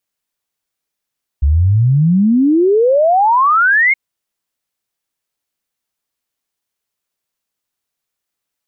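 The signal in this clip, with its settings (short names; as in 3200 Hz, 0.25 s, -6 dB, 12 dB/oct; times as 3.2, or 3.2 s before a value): log sweep 67 Hz -> 2200 Hz 2.52 s -8 dBFS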